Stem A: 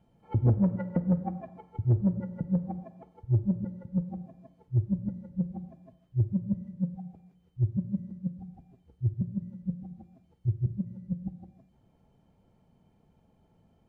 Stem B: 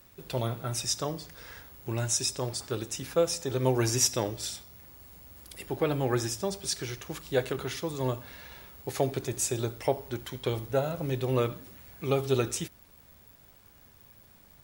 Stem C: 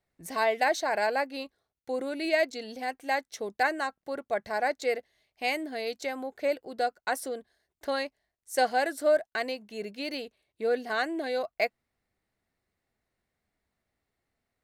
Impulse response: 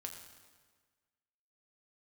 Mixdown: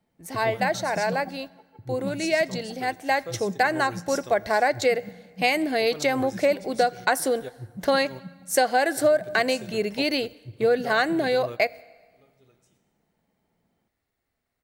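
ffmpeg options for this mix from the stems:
-filter_complex "[0:a]highpass=180,volume=-5.5dB[link_01];[1:a]adelay=100,volume=-11dB,asplit=2[link_02][link_03];[link_03]volume=-23dB[link_04];[2:a]dynaudnorm=framelen=320:gausssize=21:maxgain=11.5dB,volume=0.5dB,asplit=3[link_05][link_06][link_07];[link_06]volume=-13dB[link_08];[link_07]apad=whole_len=649994[link_09];[link_02][link_09]sidechaingate=range=-33dB:threshold=-37dB:ratio=16:detection=peak[link_10];[3:a]atrim=start_sample=2205[link_11];[link_04][link_08]amix=inputs=2:normalize=0[link_12];[link_12][link_11]afir=irnorm=-1:irlink=0[link_13];[link_01][link_10][link_05][link_13]amix=inputs=4:normalize=0,acompressor=threshold=-17dB:ratio=6"

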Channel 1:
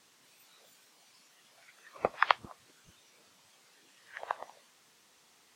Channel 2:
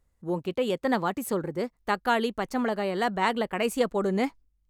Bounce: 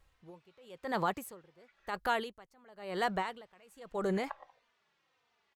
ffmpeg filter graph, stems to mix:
ffmpeg -i stem1.wav -i stem2.wav -filter_complex "[0:a]lowpass=2800,asplit=2[link_01][link_02];[link_02]adelay=3.2,afreqshift=-1.6[link_03];[link_01][link_03]amix=inputs=2:normalize=1,volume=-4.5dB,asplit=3[link_04][link_05][link_06];[link_04]atrim=end=1.97,asetpts=PTS-STARTPTS,afade=type=out:start_time=1.966:duration=0.004:curve=hsin[link_07];[link_05]atrim=start=1.97:end=2.91,asetpts=PTS-STARTPTS,volume=0[link_08];[link_06]atrim=start=2.91,asetpts=PTS-STARTPTS,afade=type=in:duration=0.004:curve=hsin[link_09];[link_07][link_08][link_09]concat=n=3:v=0:a=1[link_10];[1:a]alimiter=limit=-21.5dB:level=0:latency=1:release=29,aeval=exprs='val(0)*pow(10,-30*(0.5-0.5*cos(2*PI*0.97*n/s))/20)':channel_layout=same,volume=2dB[link_11];[link_10][link_11]amix=inputs=2:normalize=0,equalizer=frequency=250:width_type=o:width=1.1:gain=-8.5" out.wav

